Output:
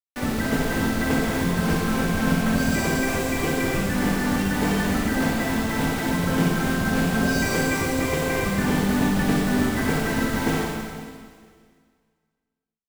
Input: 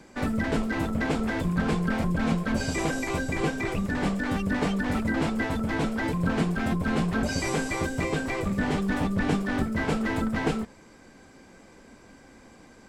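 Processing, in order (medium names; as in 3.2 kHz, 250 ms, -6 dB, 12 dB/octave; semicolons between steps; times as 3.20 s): word length cut 6-bit, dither none; reverberation RT60 1.9 s, pre-delay 44 ms, DRR -2 dB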